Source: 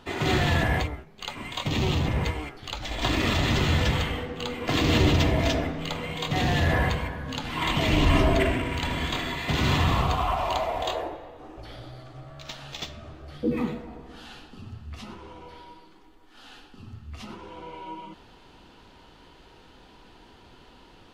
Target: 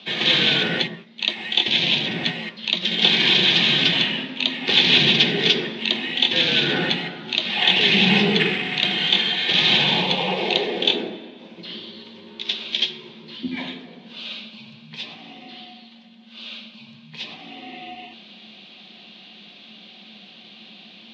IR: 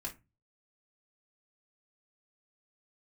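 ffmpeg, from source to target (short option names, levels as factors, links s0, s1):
-filter_complex "[0:a]afreqshift=-230,aexciter=amount=4.4:drive=7.1:freq=2100,highpass=f=180:w=0.5412,highpass=f=180:w=1.3066,equalizer=f=210:t=q:w=4:g=9,equalizer=f=360:t=q:w=4:g=9,equalizer=f=810:t=q:w=4:g=3,equalizer=f=1600:t=q:w=4:g=3,equalizer=f=3600:t=q:w=4:g=7,lowpass=f=4100:w=0.5412,lowpass=f=4100:w=1.3066,asplit=2[s0][s1];[1:a]atrim=start_sample=2205,lowpass=f=1500:w=0.5412,lowpass=f=1500:w=1.3066[s2];[s1][s2]afir=irnorm=-1:irlink=0,volume=0.2[s3];[s0][s3]amix=inputs=2:normalize=0,volume=0.841"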